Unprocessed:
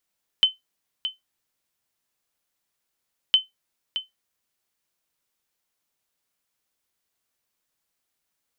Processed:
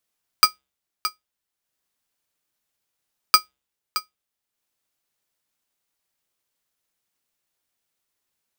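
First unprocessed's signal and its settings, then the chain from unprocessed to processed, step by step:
sonar ping 3060 Hz, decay 0.16 s, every 2.91 s, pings 2, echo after 0.62 s, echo -11 dB -8 dBFS
de-hum 134.2 Hz, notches 14; transient shaper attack +4 dB, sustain -5 dB; polarity switched at an audio rate 1800 Hz

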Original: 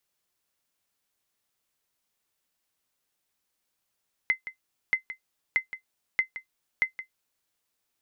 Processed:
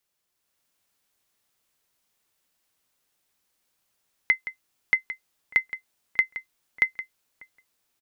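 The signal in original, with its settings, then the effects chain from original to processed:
sonar ping 2060 Hz, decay 0.11 s, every 0.63 s, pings 5, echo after 0.17 s, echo -13.5 dB -14 dBFS
AGC gain up to 5 dB; outdoor echo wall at 210 m, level -21 dB

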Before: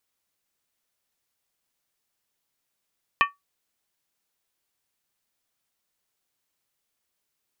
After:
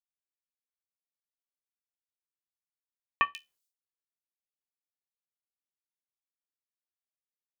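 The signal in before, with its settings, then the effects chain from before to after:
skin hit, lowest mode 1140 Hz, decay 0.17 s, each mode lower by 3 dB, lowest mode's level -13.5 dB
expander -58 dBFS; resonator 72 Hz, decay 0.21 s, harmonics all, mix 50%; bands offset in time lows, highs 0.14 s, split 3600 Hz

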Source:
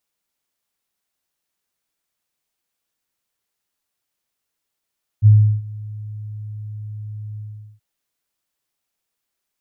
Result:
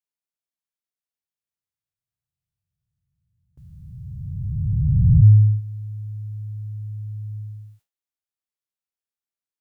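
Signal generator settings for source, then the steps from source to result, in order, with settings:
ADSR sine 106 Hz, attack 43 ms, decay 0.352 s, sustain -23 dB, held 2.16 s, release 0.417 s -5 dBFS
spectral swells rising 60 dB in 2.84 s; gate with hold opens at -39 dBFS

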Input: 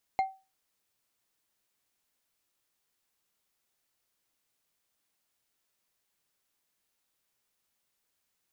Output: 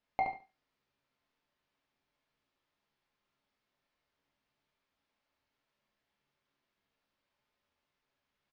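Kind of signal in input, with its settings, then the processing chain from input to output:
glass hit bar, lowest mode 768 Hz, decay 0.29 s, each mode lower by 11.5 dB, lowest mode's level -20.5 dB
air absorption 250 m; on a send: feedback echo 71 ms, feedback 21%, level -5.5 dB; on the sum: non-linear reverb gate 0.12 s falling, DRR 1 dB

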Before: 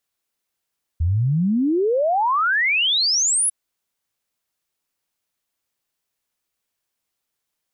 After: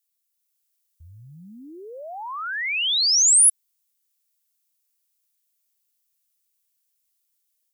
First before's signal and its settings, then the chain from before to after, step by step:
log sweep 77 Hz -> 11000 Hz 2.50 s -16 dBFS
AGC gain up to 3.5 dB; pre-emphasis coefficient 0.97

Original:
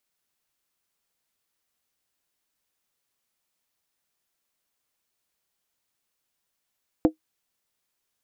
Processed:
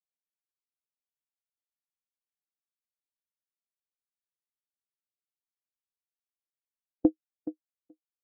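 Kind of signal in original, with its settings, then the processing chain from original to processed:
skin hit, lowest mode 314 Hz, decay 0.11 s, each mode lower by 7 dB, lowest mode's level -10 dB
on a send: tape echo 0.424 s, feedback 21%, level -5 dB; on the sum: random-step tremolo; spectral expander 1.5:1

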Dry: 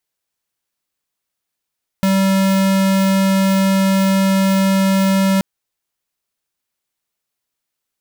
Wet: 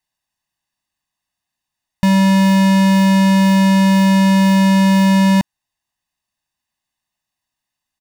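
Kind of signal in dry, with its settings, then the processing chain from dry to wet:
tone square 193 Hz -14 dBFS 3.38 s
high shelf 9700 Hz -11 dB; comb 1.1 ms, depth 83%

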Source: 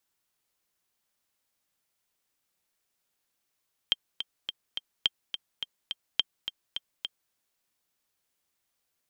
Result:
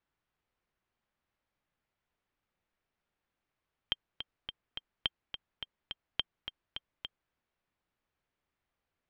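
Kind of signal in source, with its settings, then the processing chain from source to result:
metronome 211 bpm, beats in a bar 4, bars 3, 3170 Hz, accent 9.5 dB -9.5 dBFS
LPF 2300 Hz 12 dB/oct; low shelf 120 Hz +9.5 dB

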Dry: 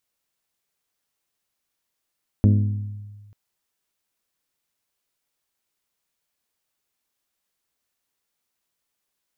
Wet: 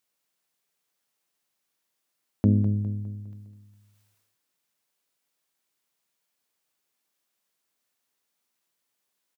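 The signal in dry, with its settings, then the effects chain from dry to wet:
glass hit bell, lowest mode 103 Hz, modes 7, decay 1.50 s, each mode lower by 5 dB, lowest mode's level -11.5 dB
HPF 130 Hz 12 dB/oct; feedback echo 0.204 s, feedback 44%, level -11 dB; sustainer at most 36 dB/s

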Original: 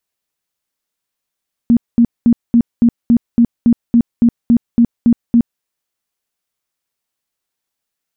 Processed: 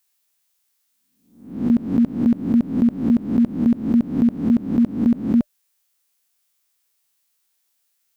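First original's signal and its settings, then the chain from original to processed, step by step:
tone bursts 235 Hz, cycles 16, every 0.28 s, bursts 14, -5.5 dBFS
spectral swells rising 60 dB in 0.57 s; tilt +2.5 dB/oct; notch 600 Hz, Q 18

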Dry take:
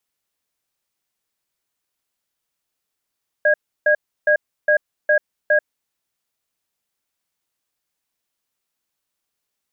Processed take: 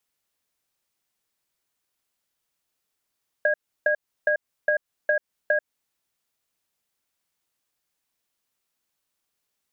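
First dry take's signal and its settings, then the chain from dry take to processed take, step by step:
cadence 602 Hz, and 1640 Hz, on 0.09 s, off 0.32 s, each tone -14.5 dBFS 2.14 s
compressor, threshold -20 dBFS

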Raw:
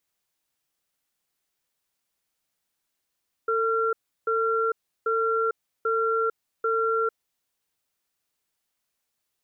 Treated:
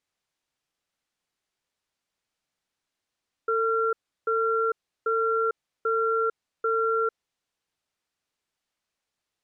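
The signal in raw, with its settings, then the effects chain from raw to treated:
cadence 449 Hz, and 1370 Hz, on 0.45 s, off 0.34 s, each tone -24 dBFS 3.70 s
air absorption 60 m

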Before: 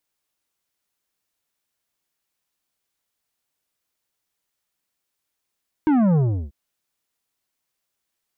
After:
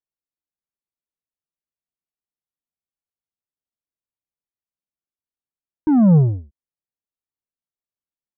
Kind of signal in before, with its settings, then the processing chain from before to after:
sub drop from 320 Hz, over 0.64 s, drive 10 dB, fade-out 0.35 s, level -15.5 dB
LPF 1200 Hz 12 dB/oct; low shelf 400 Hz +8 dB; upward expander 2.5:1, over -22 dBFS

